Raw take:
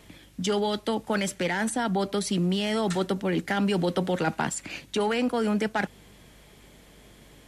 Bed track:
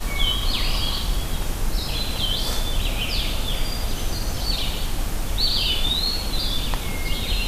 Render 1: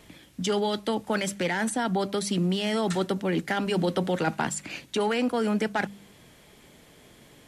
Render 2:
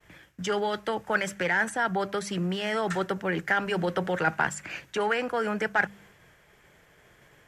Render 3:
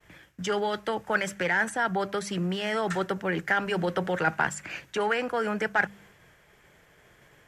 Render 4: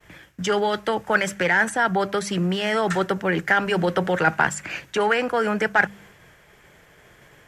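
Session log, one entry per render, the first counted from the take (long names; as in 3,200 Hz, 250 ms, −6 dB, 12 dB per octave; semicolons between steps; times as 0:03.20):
hum removal 50 Hz, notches 4
downward expander −49 dBFS; graphic EQ with 15 bands 250 Hz −11 dB, 1,600 Hz +8 dB, 4,000 Hz −8 dB, 10,000 Hz −9 dB
no processing that can be heard
level +6 dB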